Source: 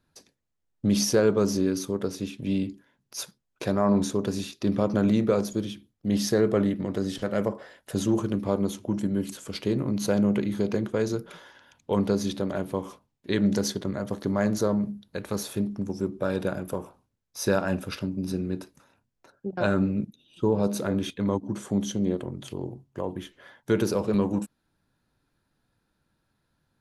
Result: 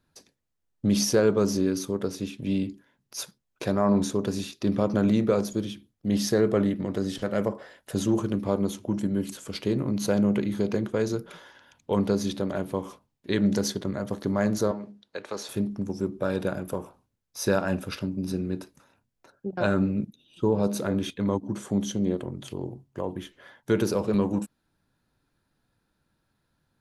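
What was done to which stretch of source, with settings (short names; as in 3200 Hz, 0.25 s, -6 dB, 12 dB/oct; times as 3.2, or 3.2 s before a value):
14.71–15.49 three-band isolator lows -18 dB, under 330 Hz, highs -22 dB, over 7700 Hz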